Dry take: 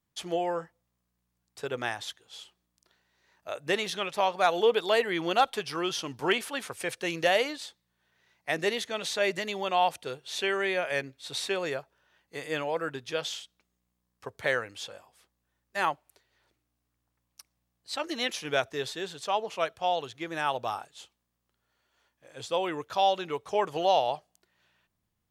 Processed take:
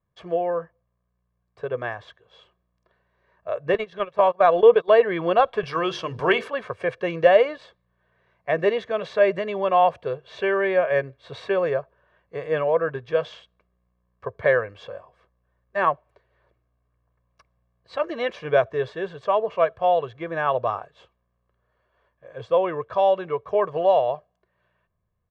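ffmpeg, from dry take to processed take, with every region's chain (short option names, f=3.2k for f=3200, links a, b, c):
-filter_complex "[0:a]asettb=1/sr,asplit=3[a][b][c];[a]atrim=end=3.744[d];[b]atrim=start=3.74:end=5.01,asetpts=PTS-STARTPTS,afade=t=in:d=0.004:c=qsin,afade=t=out:st=1.266:d=0.004:c=qsin,agate=range=-26dB:threshold=-31dB:ratio=16:release=100:detection=peak,acompressor=mode=upward:threshold=-23dB:ratio=2.5:attack=3.2:release=140:knee=2.83:detection=peak[e];[c]atrim=start=5.006[f];[d][e]acrossfade=d=0.004:c1=hsin:c2=qsin[g];[g][f]acrossfade=d=0.004:c1=qsin:c2=hsin,asettb=1/sr,asplit=3[h][i][j];[h]atrim=end=5.634[k];[i]atrim=start=5.63:end=6.48,asetpts=PTS-STARTPTS,afade=t=in:d=0.004:c=qsin,afade=t=out:st=0.846:d=0.004:c=qsin,highshelf=f=2.7k:g=11.5,bandreject=f=50:t=h:w=6,bandreject=f=100:t=h:w=6,bandreject=f=150:t=h:w=6,bandreject=f=200:t=h:w=6,bandreject=f=250:t=h:w=6,bandreject=f=300:t=h:w=6,bandreject=f=350:t=h:w=6,bandreject=f=400:t=h:w=6,bandreject=f=450:t=h:w=6,bandreject=f=500:t=h:w=6,acompressor=mode=upward:threshold=-31dB:ratio=2.5:attack=3.2:release=140:knee=2.83:detection=peak[l];[j]atrim=start=6.476[m];[k][l]acrossfade=d=0.004:c1=hsin:c2=qsin[n];[n][m]acrossfade=d=0.004:c1=qsin:c2=hsin,lowpass=1.4k,aecho=1:1:1.8:0.64,dynaudnorm=f=560:g=11:m=4dB,volume=3.5dB"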